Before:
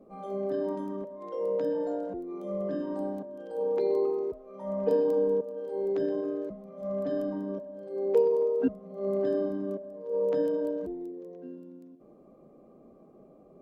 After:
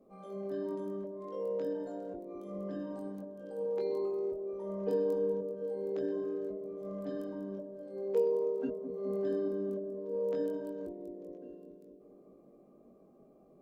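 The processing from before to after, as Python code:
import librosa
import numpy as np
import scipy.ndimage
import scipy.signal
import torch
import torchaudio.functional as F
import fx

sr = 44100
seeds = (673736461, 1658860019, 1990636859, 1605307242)

p1 = fx.high_shelf(x, sr, hz=4400.0, db=6.5)
p2 = fx.doubler(p1, sr, ms=21.0, db=-5.0)
p3 = p2 + fx.echo_bbd(p2, sr, ms=208, stages=1024, feedback_pct=75, wet_db=-8.0, dry=0)
y = F.gain(torch.from_numpy(p3), -8.5).numpy()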